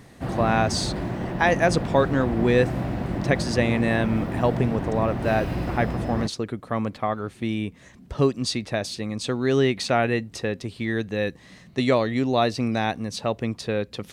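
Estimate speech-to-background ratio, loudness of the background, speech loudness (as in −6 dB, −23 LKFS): 4.0 dB, −29.0 LKFS, −25.0 LKFS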